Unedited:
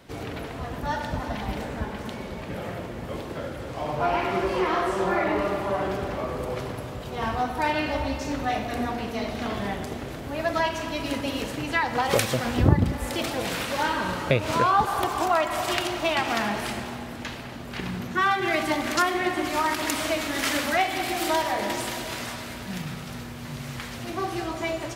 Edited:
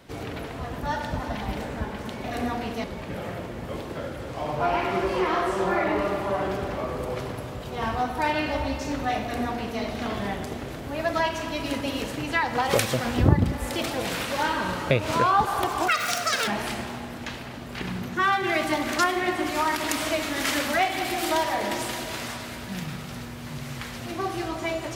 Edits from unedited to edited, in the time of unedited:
8.61–9.21 s: copy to 2.24 s
15.28–16.46 s: speed 198%

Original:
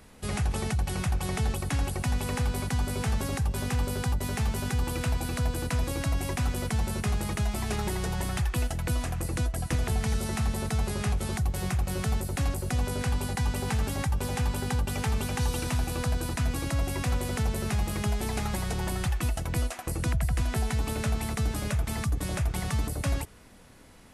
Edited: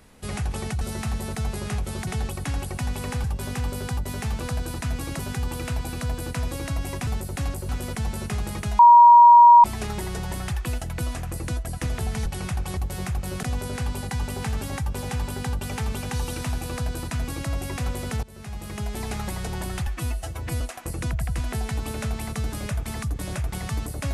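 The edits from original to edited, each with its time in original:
0.81–1.32 s: swap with 10.15–11.41 s
2.49–3.39 s: delete
7.53 s: add tone 952 Hz -7 dBFS 0.85 s
12.07–12.69 s: move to 6.43 s
15.95–16.74 s: copy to 4.55 s
17.49–18.30 s: fade in, from -21 dB
19.13–19.62 s: stretch 1.5×

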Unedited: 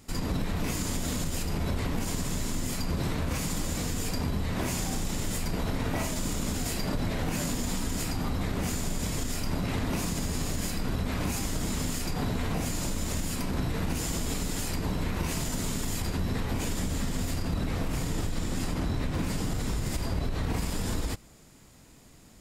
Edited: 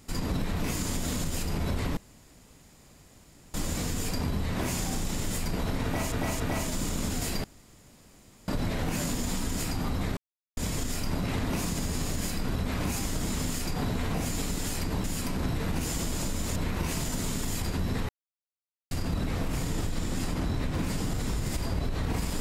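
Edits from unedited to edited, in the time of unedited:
1.97–3.54 s: room tone
5.84–6.12 s: loop, 3 plays
6.88 s: insert room tone 1.04 s
8.57–8.97 s: mute
12.77–13.18 s: swap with 14.29–14.96 s
16.49–17.31 s: mute

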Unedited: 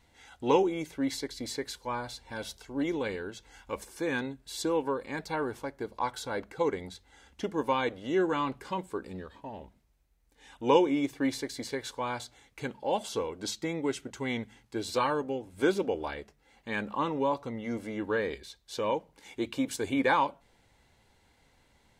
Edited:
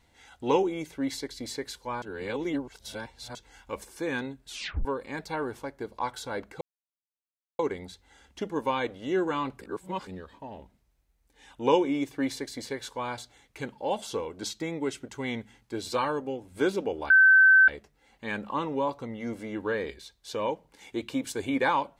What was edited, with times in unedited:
2.02–3.35 s: reverse
4.47 s: tape stop 0.38 s
6.61 s: insert silence 0.98 s
8.63–9.09 s: reverse
16.12 s: add tone 1.54 kHz -13.5 dBFS 0.58 s

